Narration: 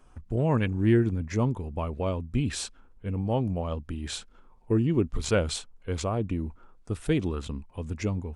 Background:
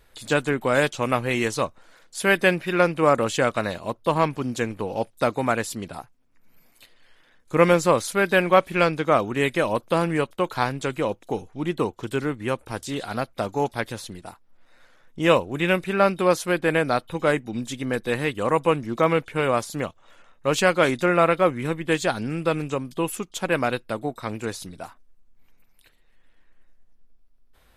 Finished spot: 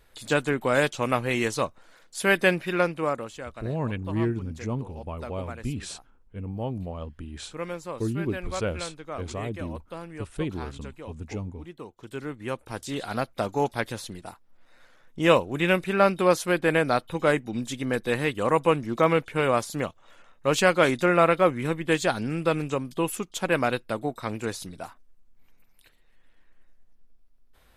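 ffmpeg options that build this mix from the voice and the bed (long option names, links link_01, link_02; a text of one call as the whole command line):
ffmpeg -i stem1.wav -i stem2.wav -filter_complex "[0:a]adelay=3300,volume=-4.5dB[link_01];[1:a]volume=14dB,afade=type=out:start_time=2.61:duration=0.73:silence=0.177828,afade=type=in:start_time=11.85:duration=1.32:silence=0.158489[link_02];[link_01][link_02]amix=inputs=2:normalize=0" out.wav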